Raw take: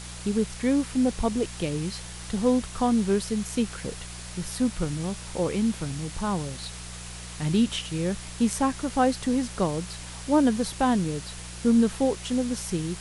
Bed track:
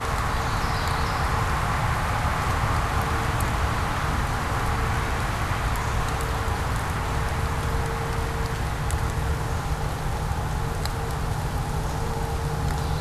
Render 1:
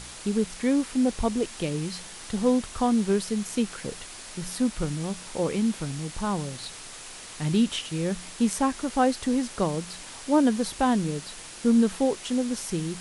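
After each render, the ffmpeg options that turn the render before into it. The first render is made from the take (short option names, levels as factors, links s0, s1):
-af "bandreject=f=60:t=h:w=4,bandreject=f=120:t=h:w=4,bandreject=f=180:t=h:w=4"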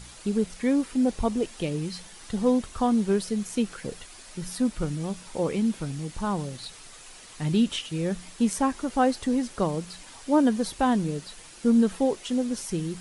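-af "afftdn=nr=7:nf=-42"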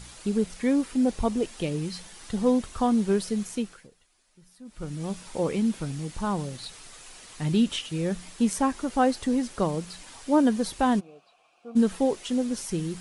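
-filter_complex "[0:a]asplit=3[s0][s1][s2];[s0]afade=t=out:st=10.99:d=0.02[s3];[s1]asplit=3[s4][s5][s6];[s4]bandpass=f=730:t=q:w=8,volume=1[s7];[s5]bandpass=f=1090:t=q:w=8,volume=0.501[s8];[s6]bandpass=f=2440:t=q:w=8,volume=0.355[s9];[s7][s8][s9]amix=inputs=3:normalize=0,afade=t=in:st=10.99:d=0.02,afade=t=out:st=11.75:d=0.02[s10];[s2]afade=t=in:st=11.75:d=0.02[s11];[s3][s10][s11]amix=inputs=3:normalize=0,asplit=3[s12][s13][s14];[s12]atrim=end=3.89,asetpts=PTS-STARTPTS,afade=t=out:st=3.42:d=0.47:silence=0.0841395[s15];[s13]atrim=start=3.89:end=4.65,asetpts=PTS-STARTPTS,volume=0.0841[s16];[s14]atrim=start=4.65,asetpts=PTS-STARTPTS,afade=t=in:d=0.47:silence=0.0841395[s17];[s15][s16][s17]concat=n=3:v=0:a=1"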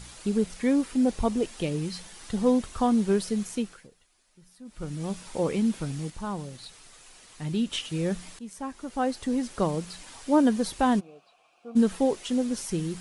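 -filter_complex "[0:a]asplit=4[s0][s1][s2][s3];[s0]atrim=end=6.102[s4];[s1]atrim=start=6.098:end=7.732,asetpts=PTS-STARTPTS,volume=0.562[s5];[s2]atrim=start=7.728:end=8.39,asetpts=PTS-STARTPTS,afade=t=out:st=0.658:d=0.004:c=hsin:silence=0.1[s6];[s3]atrim=start=8.39,asetpts=PTS-STARTPTS,afade=t=in:d=1.26:silence=0.1[s7];[s4][s5]acrossfade=d=0.004:c1=hsin:c2=hsin[s8];[s6][s7]concat=n=2:v=0:a=1[s9];[s8][s9]acrossfade=d=0.004:c1=hsin:c2=hsin"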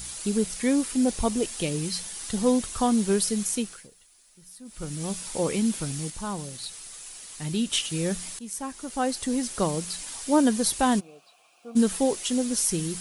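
-af "aemphasis=mode=production:type=75kf"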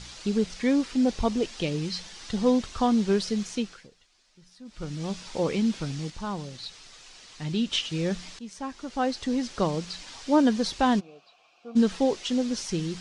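-af "lowpass=f=5500:w=0.5412,lowpass=f=5500:w=1.3066"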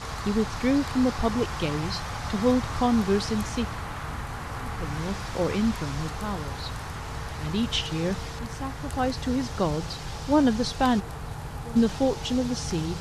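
-filter_complex "[1:a]volume=0.355[s0];[0:a][s0]amix=inputs=2:normalize=0"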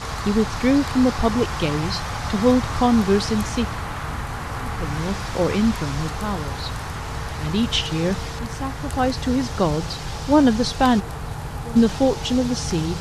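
-af "volume=1.88"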